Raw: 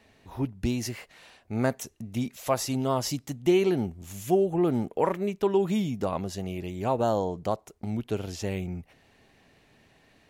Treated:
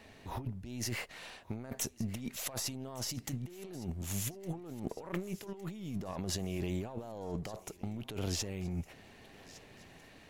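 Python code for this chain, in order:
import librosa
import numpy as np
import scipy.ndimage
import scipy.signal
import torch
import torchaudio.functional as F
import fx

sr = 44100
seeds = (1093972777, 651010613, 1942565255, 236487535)

y = np.where(x < 0.0, 10.0 ** (-3.0 / 20.0) * x, x)
y = fx.over_compress(y, sr, threshold_db=-38.0, ratio=-1.0)
y = fx.echo_thinned(y, sr, ms=1160, feedback_pct=61, hz=460.0, wet_db=-18.5)
y = y * 10.0 ** (-2.5 / 20.0)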